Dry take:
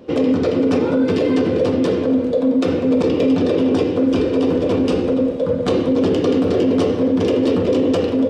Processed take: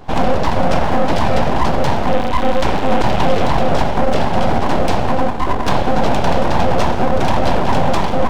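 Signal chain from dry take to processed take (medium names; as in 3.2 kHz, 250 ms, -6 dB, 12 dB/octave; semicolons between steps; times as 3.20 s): 2.06–3.46 s: mains buzz 100 Hz, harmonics 35, -37 dBFS 0 dB/octave; full-wave rectifier; trim +5 dB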